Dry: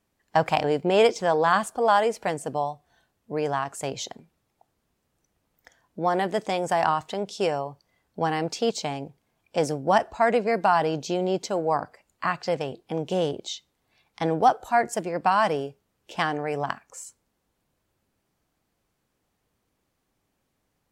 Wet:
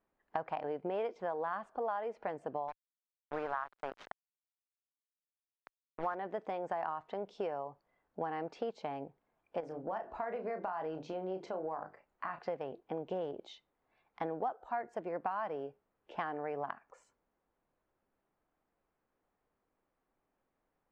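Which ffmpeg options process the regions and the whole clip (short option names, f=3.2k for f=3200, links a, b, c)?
-filter_complex "[0:a]asettb=1/sr,asplit=3[a][b][c];[a]atrim=end=2.684[d];[b]atrim=start=2.68:end=6.15,asetpts=PTS-STARTPTS,afade=t=in:d=0.004:c=qsin,afade=t=out:st=3.466:d=0.004:c=qsin,equalizer=f=1.4k:t=o:w=1.1:g=13.5,aeval=exprs='sgn(val(0))*max(abs(val(0))-0.02,0)':c=same,acrusher=bits=4:mix=0:aa=0.5[e];[c]atrim=start=6.146[f];[d][e]acrossfade=d=0.004:c1=hsin:c2=qsin[g];[g][f]acrossfade=d=0.004:c1=qsin:c2=hsin,asettb=1/sr,asplit=3[h][i][j];[h]atrim=end=9.604[k];[i]atrim=start=9.6:end=12.39,asetpts=PTS-STARTPTS,afade=t=in:d=0.004:c=qsin,afade=t=out:st=2.786:d=0.004:c=qsin,bandreject=f=50:t=h:w=6,bandreject=f=100:t=h:w=6,bandreject=f=150:t=h:w=6,bandreject=f=200:t=h:w=6,bandreject=f=250:t=h:w=6,bandreject=f=300:t=h:w=6,bandreject=f=350:t=h:w=6,bandreject=f=400:t=h:w=6,acompressor=threshold=-29dB:ratio=3:attack=3.2:release=140:knee=1:detection=peak,asplit=2[l][m];[m]adelay=32,volume=-8dB[n];[l][n]amix=inputs=2:normalize=0,atrim=end_sample=123039[o];[j]atrim=start=12.386[p];[k][o]acrossfade=d=0.004:c1=hsin:c2=qsin[q];[q][p]acrossfade=d=0.004:c1=qsin:c2=hsin,lowpass=1.5k,equalizer=f=100:t=o:w=2.6:g=-12.5,acompressor=threshold=-32dB:ratio=5,volume=-2.5dB"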